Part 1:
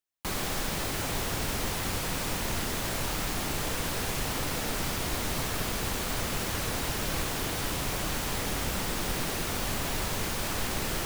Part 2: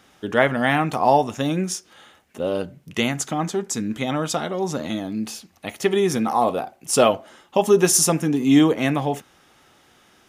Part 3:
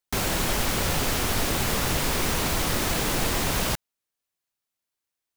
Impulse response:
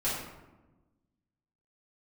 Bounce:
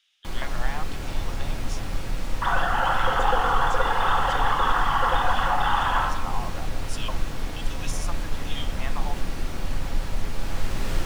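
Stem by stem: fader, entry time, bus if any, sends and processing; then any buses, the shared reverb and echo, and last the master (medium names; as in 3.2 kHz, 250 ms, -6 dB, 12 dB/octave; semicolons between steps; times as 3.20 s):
-3.0 dB, 0.00 s, no bus, send -11.5 dB, bass shelf 86 Hz +11 dB; auto duck -8 dB, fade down 0.30 s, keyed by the second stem
-11.5 dB, 0.00 s, bus A, no send, LFO high-pass square 1.2 Hz 940–3100 Hz
+2.5 dB, 2.30 s, bus A, send -6 dB, formants replaced by sine waves; static phaser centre 620 Hz, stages 6
bus A: 0.0 dB, compression, threshold -30 dBFS, peak gain reduction 9 dB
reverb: on, RT60 1.1 s, pre-delay 3 ms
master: treble shelf 8.7 kHz -12 dB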